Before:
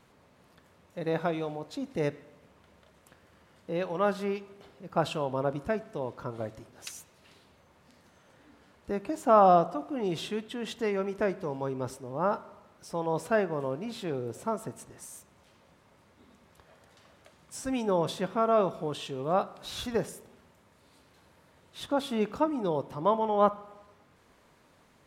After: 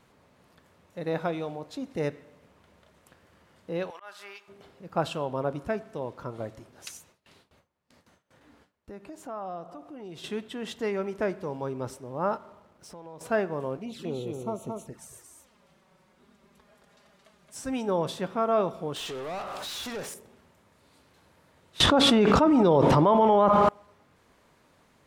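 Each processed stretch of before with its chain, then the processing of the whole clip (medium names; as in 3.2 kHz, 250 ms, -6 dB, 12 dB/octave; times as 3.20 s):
3.90–4.48 s: high-pass 1.2 kHz + slow attack 235 ms
6.97–10.24 s: gate with hold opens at -49 dBFS, closes at -51 dBFS + compression 2:1, threshold -48 dBFS
12.37–13.21 s: compression 4:1, threshold -43 dBFS + hysteresis with a dead band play -58.5 dBFS
13.77–17.56 s: delay 222 ms -4 dB + touch-sensitive flanger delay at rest 6.6 ms, full sweep at -33.5 dBFS
18.96–20.14 s: treble shelf 4.9 kHz +10 dB + compression 2.5:1, threshold -42 dBFS + overdrive pedal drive 26 dB, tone 4.4 kHz, clips at -28 dBFS
21.80–23.69 s: distance through air 58 m + level flattener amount 100%
whole clip: none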